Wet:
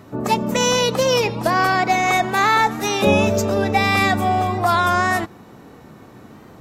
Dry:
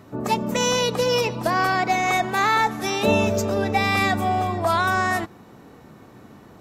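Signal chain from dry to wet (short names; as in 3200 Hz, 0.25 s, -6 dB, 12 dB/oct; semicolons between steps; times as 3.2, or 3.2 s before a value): record warp 33 1/3 rpm, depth 100 cents; gain +3.5 dB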